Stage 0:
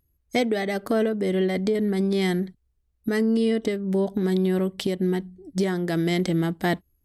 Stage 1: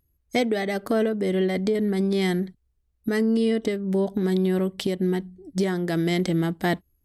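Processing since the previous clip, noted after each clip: nothing audible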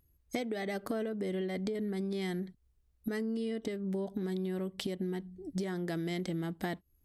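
compressor 5:1, threshold -34 dBFS, peak gain reduction 14.5 dB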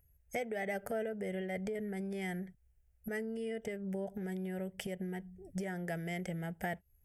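fixed phaser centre 1100 Hz, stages 6; gain +2 dB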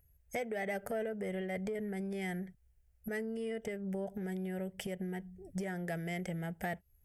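soft clip -26 dBFS, distortion -26 dB; gain +1 dB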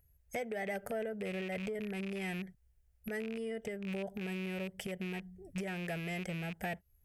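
rattling part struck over -41 dBFS, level -34 dBFS; gain -1 dB

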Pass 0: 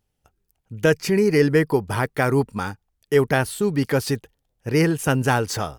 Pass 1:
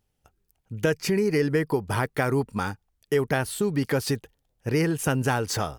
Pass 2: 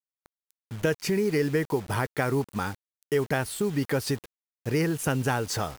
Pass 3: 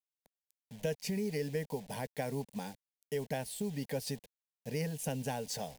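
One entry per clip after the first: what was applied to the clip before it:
compressor 2.5:1, threshold -22 dBFS, peak gain reduction 7.5 dB
bit-crush 7-bit; gain -2 dB
fixed phaser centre 340 Hz, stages 6; gain -7 dB

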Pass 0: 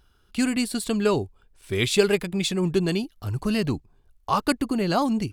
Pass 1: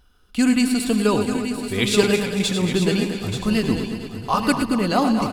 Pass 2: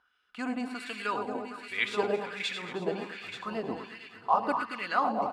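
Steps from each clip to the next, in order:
regenerating reverse delay 0.114 s, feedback 75%, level -9 dB; comb 4 ms, depth 35%; on a send: tapped delay 0.103/0.883 s -12/-9 dB; on the sum: gain +2 dB
LFO band-pass sine 1.3 Hz 690–2200 Hz

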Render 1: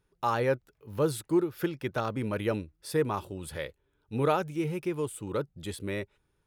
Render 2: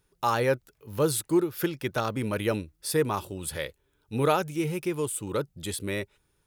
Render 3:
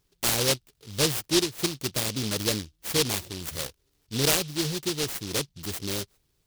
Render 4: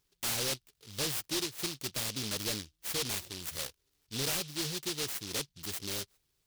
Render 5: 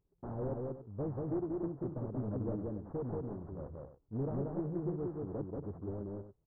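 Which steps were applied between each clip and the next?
high shelf 3900 Hz +9.5 dB; gain +2 dB
noise-modulated delay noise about 4100 Hz, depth 0.33 ms
tilt shelf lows -3.5 dB, about 760 Hz; hard clip -23.5 dBFS, distortion -7 dB; gain -6.5 dB
Gaussian blur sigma 11 samples; loudspeakers at several distances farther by 63 m -2 dB, 96 m -12 dB; Doppler distortion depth 0.29 ms; gain +3.5 dB

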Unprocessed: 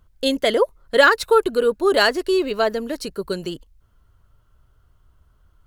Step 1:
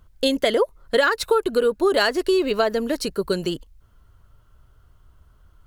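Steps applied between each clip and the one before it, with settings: compressor 6:1, threshold -19 dBFS, peak gain reduction 10.5 dB; gain +3.5 dB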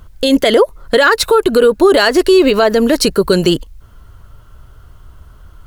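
maximiser +15.5 dB; gain -1 dB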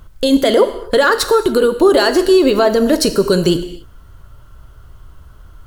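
non-linear reverb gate 0.31 s falling, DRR 8.5 dB; dynamic EQ 2300 Hz, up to -6 dB, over -32 dBFS, Q 1.5; gain -1.5 dB

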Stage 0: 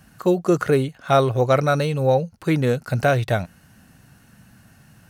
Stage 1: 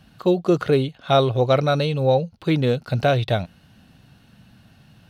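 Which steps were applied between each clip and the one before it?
EQ curve 700 Hz 0 dB, 1800 Hz -5 dB, 3600 Hz +7 dB, 6900 Hz -10 dB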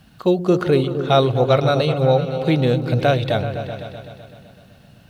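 repeats that get brighter 0.127 s, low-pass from 200 Hz, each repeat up 2 oct, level -6 dB; bit-crush 11-bit; gain +1.5 dB

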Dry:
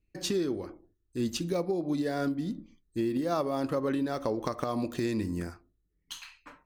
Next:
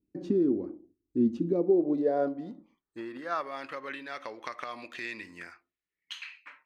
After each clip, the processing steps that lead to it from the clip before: band-pass sweep 270 Hz -> 2200 Hz, 1.42–3.65; gain +8.5 dB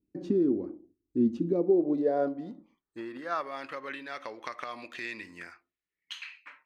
nothing audible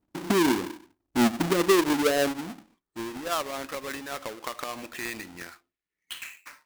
half-waves squared off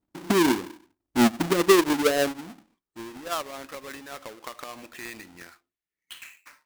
upward expander 1.5:1, over -33 dBFS; gain +4 dB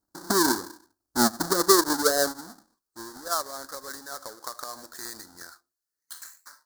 EQ curve 100 Hz 0 dB, 150 Hz -4 dB, 1600 Hz +7 dB, 2600 Hz -25 dB, 4300 Hz +11 dB; gain -3.5 dB

